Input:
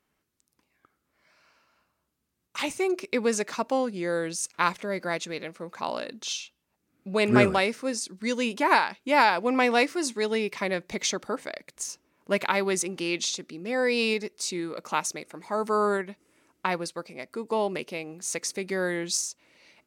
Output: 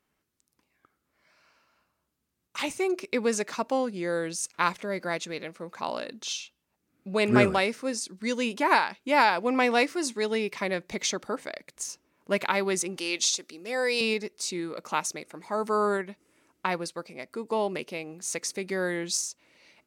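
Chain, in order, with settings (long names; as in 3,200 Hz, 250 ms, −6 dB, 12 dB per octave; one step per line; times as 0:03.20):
0:12.97–0:14.01: bass and treble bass −15 dB, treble +7 dB
level −1 dB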